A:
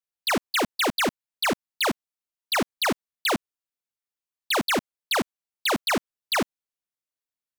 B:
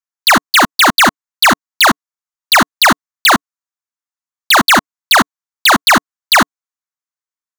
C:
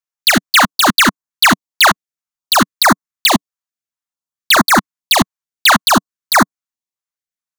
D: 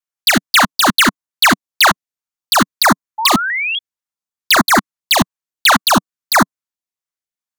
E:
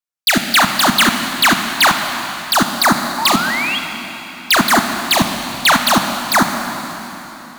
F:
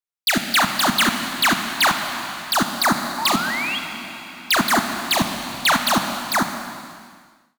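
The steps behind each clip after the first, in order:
drawn EQ curve 170 Hz 0 dB, 290 Hz +1 dB, 440 Hz −7 dB, 700 Hz +6 dB, 1,100 Hz +14 dB, 1,900 Hz +10 dB, 2,900 Hz +2 dB, 4,700 Hz +7 dB, 6,800 Hz +12 dB, 10,000 Hz +2 dB; leveller curve on the samples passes 5
parametric band 190 Hz +4 dB 0.87 octaves; notch on a step sequencer 4.6 Hz 260–2,900 Hz
sound drawn into the spectrogram rise, 0:03.18–0:03.79, 870–3,300 Hz −18 dBFS; pitch modulation by a square or saw wave saw down 4 Hz, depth 100 cents; level −1 dB
convolution reverb RT60 4.0 s, pre-delay 16 ms, DRR 5 dB; level −1.5 dB
fade-out on the ending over 1.42 s; level −5.5 dB

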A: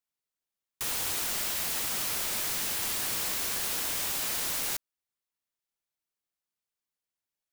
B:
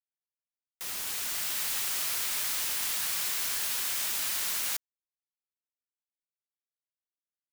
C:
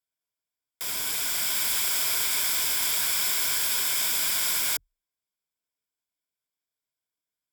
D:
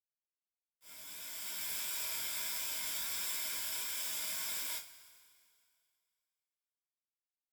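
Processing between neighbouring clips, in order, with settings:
fade in at the beginning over 1.69 s; high-pass filter 1,100 Hz 12 dB per octave; bit reduction 6 bits
EQ curve with evenly spaced ripples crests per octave 1.7, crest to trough 9 dB; level +4.5 dB
downward expander −19 dBFS; chorus effect 1.5 Hz, delay 17.5 ms, depth 3.9 ms; coupled-rooms reverb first 0.22 s, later 2.3 s, from −22 dB, DRR −2.5 dB; level −7.5 dB

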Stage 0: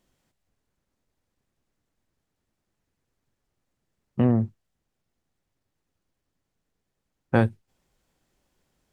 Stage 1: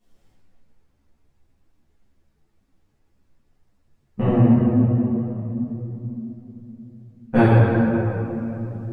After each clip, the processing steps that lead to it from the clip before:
low-shelf EQ 160 Hz +6.5 dB
rectangular room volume 190 cubic metres, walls hard, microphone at 1.8 metres
string-ensemble chorus
level −1.5 dB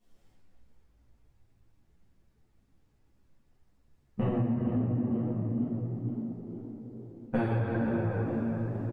downward compressor 12 to 1, threshold −21 dBFS, peak gain reduction 12 dB
on a send: echo with shifted repeats 465 ms, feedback 50%, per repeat +54 Hz, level −12 dB
on the sum: level −4 dB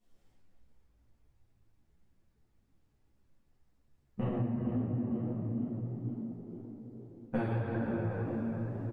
flanger 1.8 Hz, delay 8.5 ms, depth 9.2 ms, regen −64%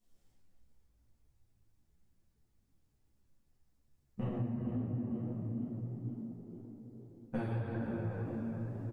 bass and treble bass +3 dB, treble +8 dB
level −5.5 dB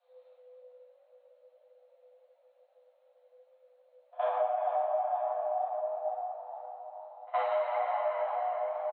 echo ahead of the sound 66 ms −23.5 dB
downsampling to 8,000 Hz
frequency shifter +500 Hz
level +6 dB

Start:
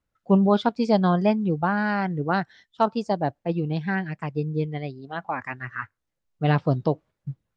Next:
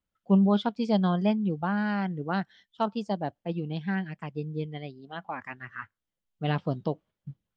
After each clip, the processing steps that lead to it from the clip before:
thirty-one-band graphic EQ 125 Hz −4 dB, 200 Hz +6 dB, 3,150 Hz +8 dB
level −7 dB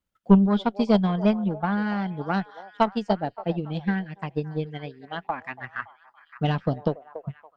echo through a band-pass that steps 283 ms, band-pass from 620 Hz, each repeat 0.7 octaves, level −10 dB
harmonic generator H 2 −10 dB, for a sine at −11 dBFS
transient designer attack +7 dB, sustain −3 dB
level +2 dB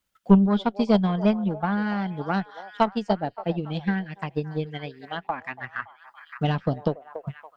one half of a high-frequency compander encoder only

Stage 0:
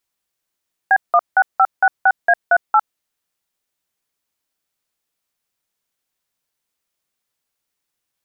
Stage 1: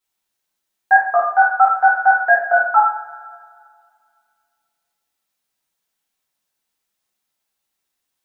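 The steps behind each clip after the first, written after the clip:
coupled-rooms reverb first 0.52 s, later 2.2 s, from −18 dB, DRR −7.5 dB
level −6.5 dB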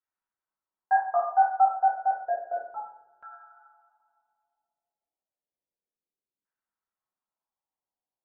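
tuned comb filter 950 Hz, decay 0.32 s, mix 60%
auto-filter low-pass saw down 0.31 Hz 370–1,600 Hz
level −6 dB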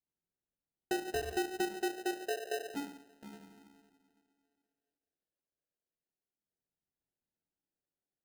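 low-pass filter 1,100 Hz 12 dB per octave
downward compressor 4 to 1, threshold −34 dBFS, peak gain reduction 14.5 dB
decimation without filtering 39×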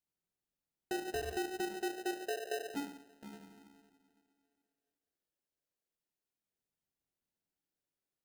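brickwall limiter −30.5 dBFS, peak gain reduction 5 dB

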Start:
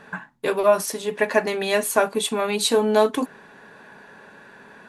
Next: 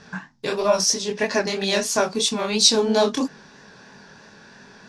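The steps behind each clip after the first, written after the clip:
low-pass with resonance 5,400 Hz, resonance Q 5.1
chorus effect 3 Hz, delay 20 ms, depth 6.4 ms
bass and treble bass +9 dB, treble +8 dB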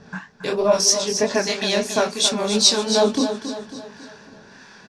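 two-band tremolo in antiphase 1.6 Hz, depth 70%, crossover 860 Hz
on a send: repeating echo 274 ms, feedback 47%, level −9.5 dB
on the sum: level +4 dB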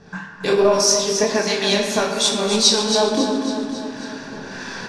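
camcorder AGC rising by 8.8 dB per second
on a send at −2 dB: convolution reverb RT60 1.6 s, pre-delay 3 ms
on the sum: level −1 dB

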